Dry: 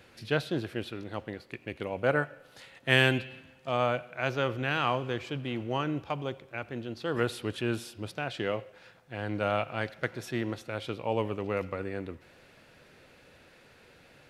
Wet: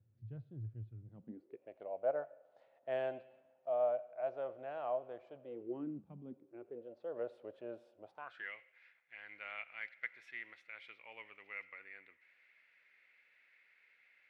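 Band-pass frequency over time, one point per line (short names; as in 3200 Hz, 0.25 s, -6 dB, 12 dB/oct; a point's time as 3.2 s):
band-pass, Q 7.6
1.03 s 110 Hz
1.69 s 640 Hz
5.38 s 640 Hz
6.09 s 180 Hz
6.93 s 580 Hz
7.99 s 580 Hz
8.52 s 2100 Hz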